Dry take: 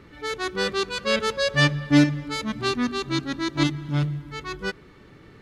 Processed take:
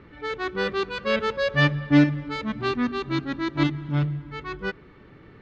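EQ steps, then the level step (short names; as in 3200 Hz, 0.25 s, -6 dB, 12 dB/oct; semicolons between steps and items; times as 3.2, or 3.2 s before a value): LPF 2900 Hz 12 dB/oct; 0.0 dB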